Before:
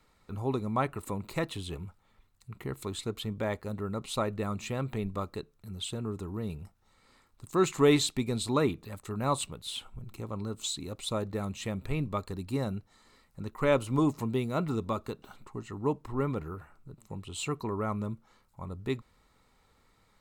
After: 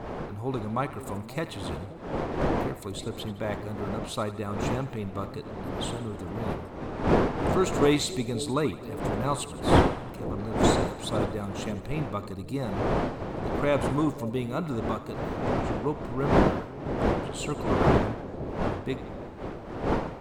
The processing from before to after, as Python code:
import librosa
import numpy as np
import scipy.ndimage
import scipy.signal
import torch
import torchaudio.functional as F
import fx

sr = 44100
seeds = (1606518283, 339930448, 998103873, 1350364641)

y = fx.dmg_wind(x, sr, seeds[0], corner_hz=590.0, level_db=-30.0)
y = fx.echo_split(y, sr, split_hz=660.0, low_ms=530, high_ms=81, feedback_pct=52, wet_db=-14)